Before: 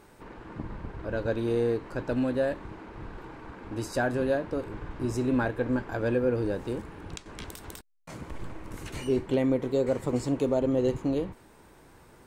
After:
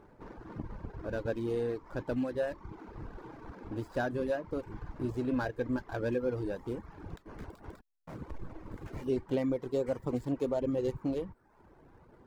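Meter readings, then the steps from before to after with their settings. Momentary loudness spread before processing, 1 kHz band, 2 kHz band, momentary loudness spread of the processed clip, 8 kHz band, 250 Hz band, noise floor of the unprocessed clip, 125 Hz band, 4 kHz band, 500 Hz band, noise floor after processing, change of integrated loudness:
17 LU, -5.5 dB, -6.5 dB, 16 LU, under -10 dB, -5.5 dB, -55 dBFS, -6.0 dB, -8.5 dB, -5.5 dB, -62 dBFS, -6.0 dB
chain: median filter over 15 samples; in parallel at -1.5 dB: compressor, threshold -36 dBFS, peak gain reduction 14.5 dB; on the sum: reverb removal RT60 0.77 s; mismatched tape noise reduction decoder only; gain -6 dB

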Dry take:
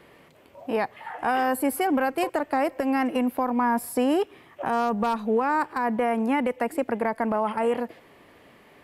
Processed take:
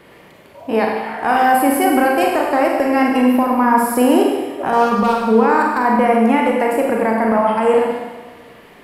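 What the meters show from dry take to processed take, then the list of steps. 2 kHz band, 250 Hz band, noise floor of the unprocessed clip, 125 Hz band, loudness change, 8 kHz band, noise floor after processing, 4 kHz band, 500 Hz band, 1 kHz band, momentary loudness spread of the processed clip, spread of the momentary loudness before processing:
+10.0 dB, +10.0 dB, -54 dBFS, n/a, +10.0 dB, +10.0 dB, -44 dBFS, +10.0 dB, +10.5 dB, +10.5 dB, 6 LU, 6 LU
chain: Schroeder reverb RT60 1.3 s, combs from 32 ms, DRR -1 dB; gain +6.5 dB

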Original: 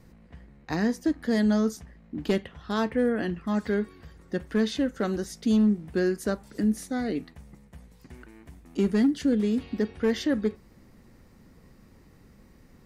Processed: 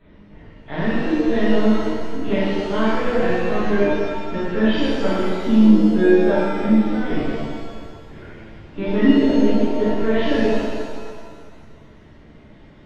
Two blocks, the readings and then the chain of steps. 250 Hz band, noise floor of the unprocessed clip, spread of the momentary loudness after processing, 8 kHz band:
+8.0 dB, -55 dBFS, 15 LU, n/a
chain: nonlinear frequency compression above 2300 Hz 1.5:1; notches 50/100/150/200/250/300/350/400/450 Hz; LPC vocoder at 8 kHz pitch kept; shimmer reverb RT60 1.8 s, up +7 st, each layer -8 dB, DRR -10.5 dB; gain -1 dB

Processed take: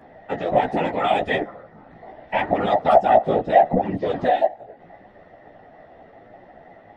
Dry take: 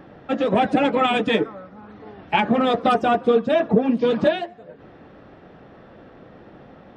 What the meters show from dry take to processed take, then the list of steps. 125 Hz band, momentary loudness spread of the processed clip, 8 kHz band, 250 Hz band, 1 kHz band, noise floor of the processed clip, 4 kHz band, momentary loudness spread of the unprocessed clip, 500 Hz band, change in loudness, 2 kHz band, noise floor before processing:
-1.0 dB, 9 LU, n/a, -6.5 dB, +3.0 dB, -49 dBFS, -6.0 dB, 6 LU, +0.5 dB, 0.0 dB, -2.0 dB, -47 dBFS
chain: small resonant body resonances 690/1900 Hz, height 18 dB, ringing for 55 ms; whisperiser; chorus voices 2, 0.76 Hz, delay 14 ms, depth 4.3 ms; gain -3.5 dB

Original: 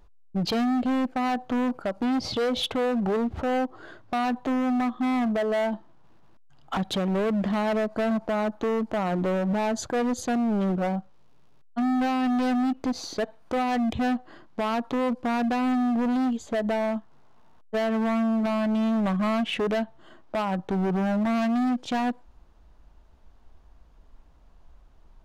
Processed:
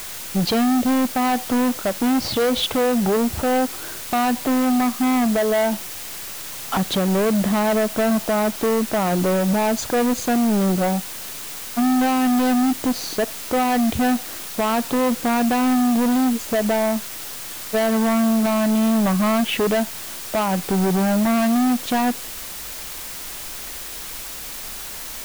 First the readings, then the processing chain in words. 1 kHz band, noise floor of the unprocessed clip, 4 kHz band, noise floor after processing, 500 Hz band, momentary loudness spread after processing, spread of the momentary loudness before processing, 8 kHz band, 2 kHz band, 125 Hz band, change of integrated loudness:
+6.0 dB, -53 dBFS, +8.5 dB, -33 dBFS, +6.0 dB, 12 LU, 6 LU, +16.5 dB, +6.5 dB, +6.0 dB, +5.5 dB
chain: added noise white -39 dBFS; gain +6 dB

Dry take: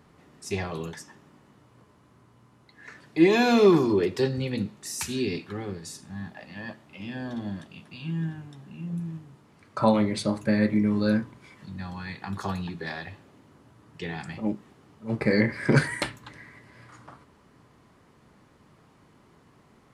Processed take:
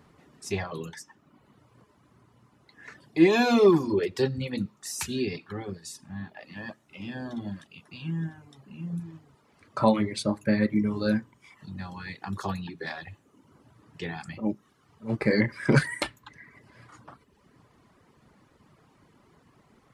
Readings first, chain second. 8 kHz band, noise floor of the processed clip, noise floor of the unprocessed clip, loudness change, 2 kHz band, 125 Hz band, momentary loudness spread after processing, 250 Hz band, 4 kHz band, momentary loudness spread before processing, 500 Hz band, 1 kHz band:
-1.0 dB, -64 dBFS, -59 dBFS, -1.0 dB, -1.0 dB, -1.5 dB, 20 LU, -1.5 dB, -1.0 dB, 19 LU, -1.0 dB, -1.0 dB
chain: reverb removal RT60 0.86 s

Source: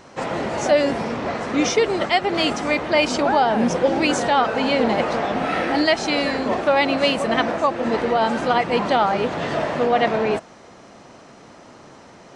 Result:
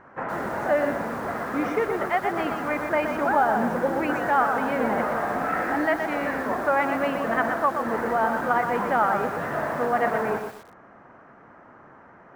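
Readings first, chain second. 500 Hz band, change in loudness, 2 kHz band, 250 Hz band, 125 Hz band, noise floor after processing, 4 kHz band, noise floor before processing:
-5.5 dB, -4.5 dB, -3.0 dB, -6.0 dB, -6.0 dB, -50 dBFS, -19.0 dB, -46 dBFS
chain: EQ curve 530 Hz 0 dB, 1600 Hz +8 dB, 4000 Hz -23 dB; lo-fi delay 0.122 s, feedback 35%, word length 6-bit, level -6 dB; gain -7 dB

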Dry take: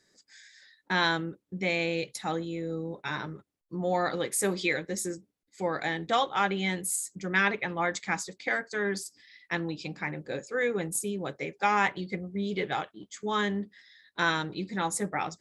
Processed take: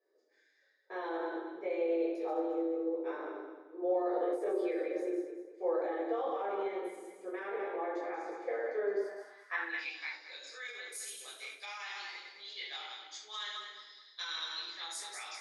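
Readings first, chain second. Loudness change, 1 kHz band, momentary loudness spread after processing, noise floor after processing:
-7.0 dB, -10.5 dB, 11 LU, -71 dBFS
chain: regenerating reverse delay 0.106 s, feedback 56%, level -5 dB; flange 0.23 Hz, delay 5.1 ms, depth 4.9 ms, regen +86%; steep high-pass 300 Hz 48 dB/oct; high shelf 7500 Hz +5.5 dB; notch 7500 Hz, Q 5.4; shoebox room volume 660 m³, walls furnished, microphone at 5.8 m; limiter -18.5 dBFS, peak gain reduction 10.5 dB; band-pass sweep 450 Hz -> 4400 Hz, 8.99–10.17

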